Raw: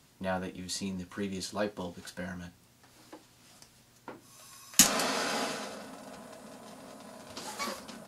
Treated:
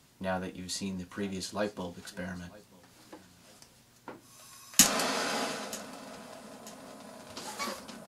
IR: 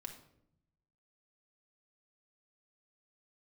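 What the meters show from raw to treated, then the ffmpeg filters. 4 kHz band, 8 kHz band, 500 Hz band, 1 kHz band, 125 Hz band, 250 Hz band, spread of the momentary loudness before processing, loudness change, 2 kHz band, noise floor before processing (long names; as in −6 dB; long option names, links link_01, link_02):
0.0 dB, 0.0 dB, 0.0 dB, 0.0 dB, 0.0 dB, 0.0 dB, 25 LU, 0.0 dB, 0.0 dB, −62 dBFS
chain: -af "aecho=1:1:937|1874:0.0841|0.0278"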